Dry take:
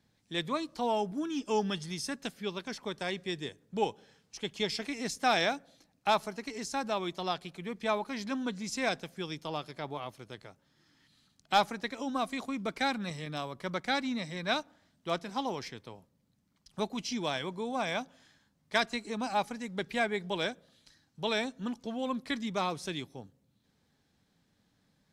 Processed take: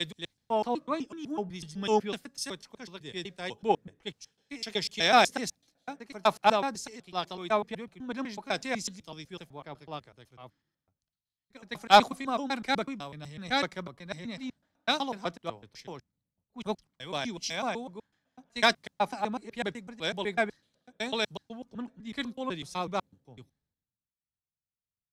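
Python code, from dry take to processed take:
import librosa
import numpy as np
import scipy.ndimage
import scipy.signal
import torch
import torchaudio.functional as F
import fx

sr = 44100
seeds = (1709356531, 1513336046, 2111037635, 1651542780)

y = fx.block_reorder(x, sr, ms=125.0, group=4)
y = fx.band_widen(y, sr, depth_pct=100)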